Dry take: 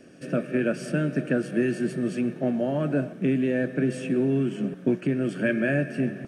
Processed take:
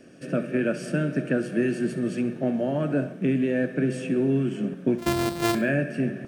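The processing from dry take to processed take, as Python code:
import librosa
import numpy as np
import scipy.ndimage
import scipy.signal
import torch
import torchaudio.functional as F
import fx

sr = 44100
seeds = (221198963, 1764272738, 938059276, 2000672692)

p1 = fx.sample_sort(x, sr, block=128, at=(4.98, 5.55))
y = p1 + fx.echo_feedback(p1, sr, ms=67, feedback_pct=37, wet_db=-14.5, dry=0)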